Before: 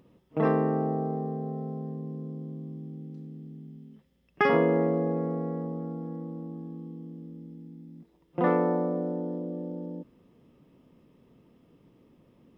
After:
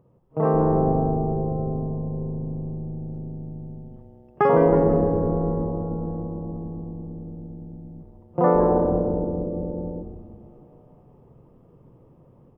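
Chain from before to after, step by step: graphic EQ 125/250/500/1000/2000/4000 Hz +7/-9/+3/+4/-7/-11 dB; level rider gain up to 7 dB; treble shelf 2.2 kHz -12 dB; frequency-shifting echo 161 ms, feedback 61%, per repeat -130 Hz, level -8 dB

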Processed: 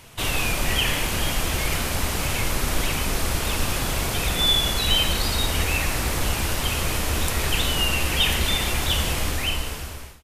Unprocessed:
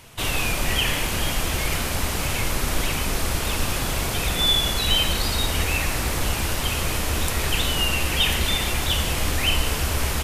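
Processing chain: fade out at the end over 1.16 s

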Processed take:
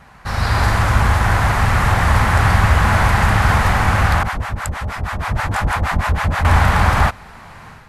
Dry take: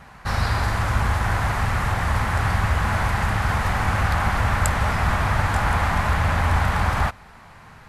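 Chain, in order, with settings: level rider; 4.23–6.45 s: harmonic tremolo 6.3 Hz, depth 100%, crossover 580 Hz

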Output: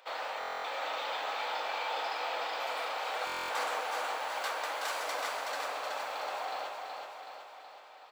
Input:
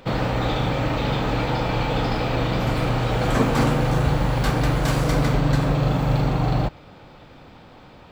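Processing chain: high-pass 630 Hz 24 dB/octave; feedback delay 374 ms, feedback 57%, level -4.5 dB; buffer glitch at 0.39/3.25 s, samples 1024, times 10; trim -8.5 dB

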